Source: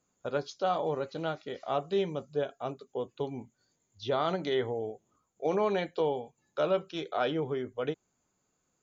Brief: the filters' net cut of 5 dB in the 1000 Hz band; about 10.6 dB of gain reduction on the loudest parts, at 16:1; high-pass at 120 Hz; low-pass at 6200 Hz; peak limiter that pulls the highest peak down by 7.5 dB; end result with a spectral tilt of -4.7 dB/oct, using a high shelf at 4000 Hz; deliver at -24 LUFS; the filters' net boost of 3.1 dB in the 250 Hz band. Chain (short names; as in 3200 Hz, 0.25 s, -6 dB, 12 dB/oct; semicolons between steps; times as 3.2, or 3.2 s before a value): HPF 120 Hz; LPF 6200 Hz; bell 250 Hz +5.5 dB; bell 1000 Hz -8.5 dB; high shelf 4000 Hz +5.5 dB; compressor 16:1, threshold -34 dBFS; gain +18.5 dB; limiter -13 dBFS